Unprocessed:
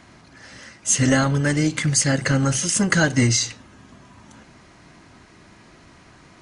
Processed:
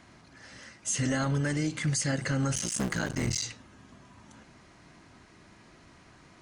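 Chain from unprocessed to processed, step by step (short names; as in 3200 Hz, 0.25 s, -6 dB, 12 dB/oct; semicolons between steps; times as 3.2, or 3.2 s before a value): 2.54–3.43 cycle switcher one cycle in 3, muted; limiter -14 dBFS, peak gain reduction 8 dB; gain -6.5 dB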